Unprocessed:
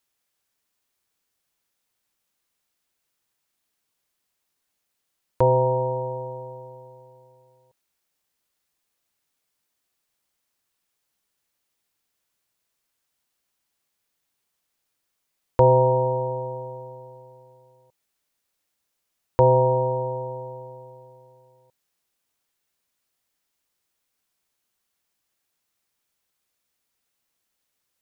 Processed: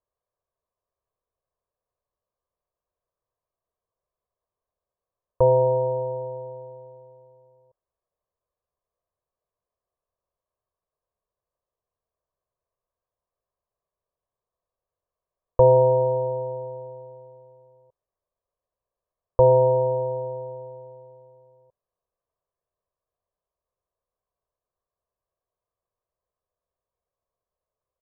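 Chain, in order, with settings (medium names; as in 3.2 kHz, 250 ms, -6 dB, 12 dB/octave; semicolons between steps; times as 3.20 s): low-pass 1 kHz 24 dB/octave; peaking EQ 190 Hz -7 dB 1.7 oct; comb 1.8 ms, depth 67%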